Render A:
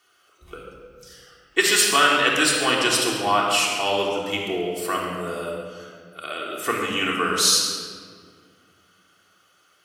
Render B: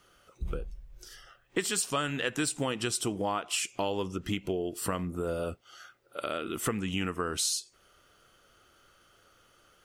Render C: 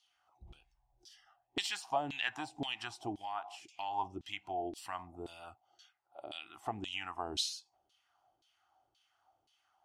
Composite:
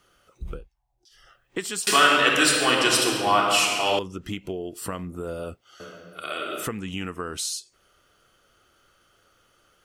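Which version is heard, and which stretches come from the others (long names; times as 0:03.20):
B
0:00.61–0:01.18: punch in from C, crossfade 0.16 s
0:01.87–0:03.99: punch in from A
0:05.80–0:06.66: punch in from A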